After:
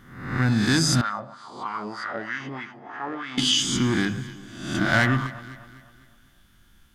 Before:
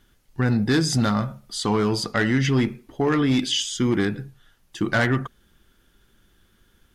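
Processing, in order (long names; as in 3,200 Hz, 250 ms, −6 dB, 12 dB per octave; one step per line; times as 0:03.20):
peak hold with a rise ahead of every peak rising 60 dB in 0.76 s
parametric band 440 Hz −12.5 dB 0.6 octaves
mains-hum notches 50/100/150 Hz
delay that swaps between a low-pass and a high-pass 126 ms, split 1,300 Hz, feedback 65%, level −12.5 dB
0:01.01–0:03.38: LFO wah 3.2 Hz 490–1,600 Hz, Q 2.1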